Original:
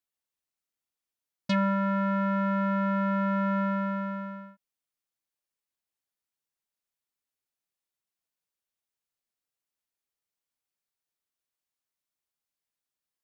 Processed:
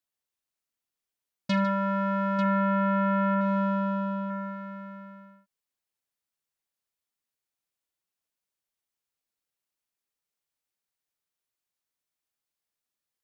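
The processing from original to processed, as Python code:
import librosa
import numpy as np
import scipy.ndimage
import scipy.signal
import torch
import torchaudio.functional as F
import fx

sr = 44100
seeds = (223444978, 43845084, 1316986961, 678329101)

p1 = fx.lowpass(x, sr, hz=3500.0, slope=24, at=(2.45, 3.41))
y = p1 + fx.echo_multitap(p1, sr, ms=(42, 78, 151, 893), db=(-13.0, -17.5, -13.5, -10.0), dry=0)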